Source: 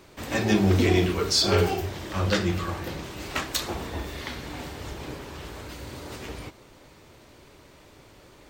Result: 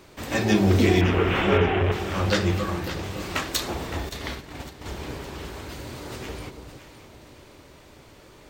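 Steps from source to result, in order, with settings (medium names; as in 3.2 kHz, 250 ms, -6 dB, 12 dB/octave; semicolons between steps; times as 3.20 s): 1.01–1.92 s: one-bit delta coder 16 kbps, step -20.5 dBFS; echo whose repeats swap between lows and highs 282 ms, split 820 Hz, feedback 61%, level -7 dB; 4.09–4.86 s: gate -34 dBFS, range -10 dB; trim +1.5 dB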